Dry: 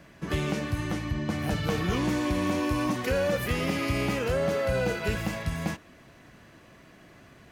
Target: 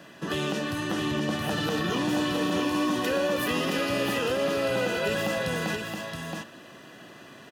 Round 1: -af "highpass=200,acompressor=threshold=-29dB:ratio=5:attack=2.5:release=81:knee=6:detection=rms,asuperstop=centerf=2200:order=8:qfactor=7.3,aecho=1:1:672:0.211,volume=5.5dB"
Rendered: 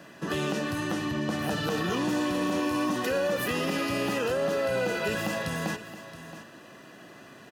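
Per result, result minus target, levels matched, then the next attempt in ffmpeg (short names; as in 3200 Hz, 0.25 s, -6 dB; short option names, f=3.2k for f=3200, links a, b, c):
echo-to-direct -9 dB; 4000 Hz band -3.0 dB
-af "highpass=200,acompressor=threshold=-29dB:ratio=5:attack=2.5:release=81:knee=6:detection=rms,asuperstop=centerf=2200:order=8:qfactor=7.3,aecho=1:1:672:0.596,volume=5.5dB"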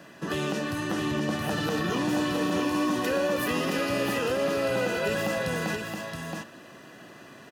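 4000 Hz band -2.5 dB
-af "highpass=200,acompressor=threshold=-29dB:ratio=5:attack=2.5:release=81:knee=6:detection=rms,asuperstop=centerf=2200:order=8:qfactor=7.3,equalizer=f=3.3k:w=3:g=4.5,aecho=1:1:672:0.596,volume=5.5dB"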